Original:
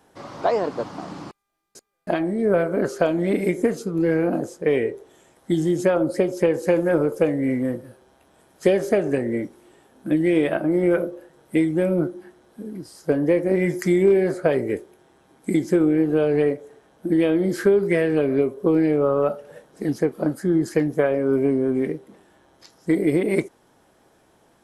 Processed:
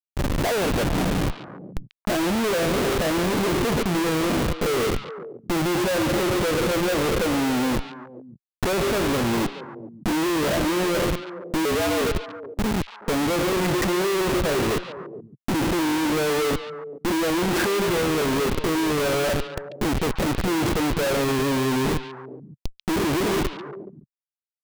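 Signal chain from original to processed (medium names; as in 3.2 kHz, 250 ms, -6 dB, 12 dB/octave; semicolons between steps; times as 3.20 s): 11.65–12.14 s: frequency shift +110 Hz; Schmitt trigger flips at -32.5 dBFS; repeats whose band climbs or falls 141 ms, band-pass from 3.1 kHz, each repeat -1.4 oct, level -6 dB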